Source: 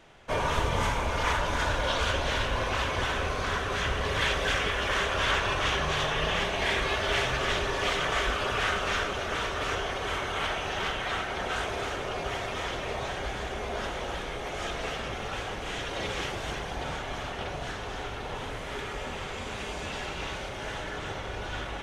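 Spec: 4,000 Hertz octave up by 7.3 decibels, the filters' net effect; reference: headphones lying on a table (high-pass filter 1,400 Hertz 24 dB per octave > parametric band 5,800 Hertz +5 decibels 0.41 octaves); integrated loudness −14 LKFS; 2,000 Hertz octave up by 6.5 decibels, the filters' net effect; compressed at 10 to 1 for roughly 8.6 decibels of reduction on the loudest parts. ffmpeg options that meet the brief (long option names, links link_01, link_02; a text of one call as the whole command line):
ffmpeg -i in.wav -af "equalizer=frequency=2000:width_type=o:gain=7.5,equalizer=frequency=4000:width_type=o:gain=6,acompressor=threshold=-26dB:ratio=10,highpass=frequency=1400:width=0.5412,highpass=frequency=1400:width=1.3066,equalizer=frequency=5800:width_type=o:width=0.41:gain=5,volume=16.5dB" out.wav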